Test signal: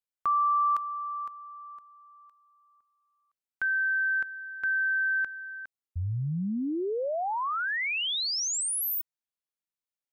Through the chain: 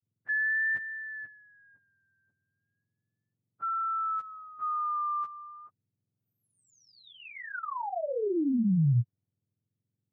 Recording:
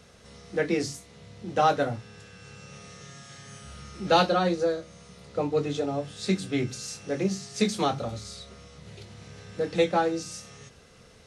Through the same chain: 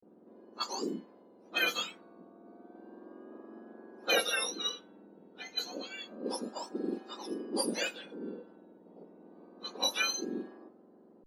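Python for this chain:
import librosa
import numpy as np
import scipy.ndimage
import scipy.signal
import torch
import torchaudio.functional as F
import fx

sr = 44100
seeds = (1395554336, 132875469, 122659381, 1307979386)

y = fx.octave_mirror(x, sr, pivot_hz=1400.0)
y = fx.env_lowpass(y, sr, base_hz=580.0, full_db=-23.5)
y = fx.wow_flutter(y, sr, seeds[0], rate_hz=0.3, depth_cents=100.0)
y = F.gain(torch.from_numpy(y), -3.5).numpy()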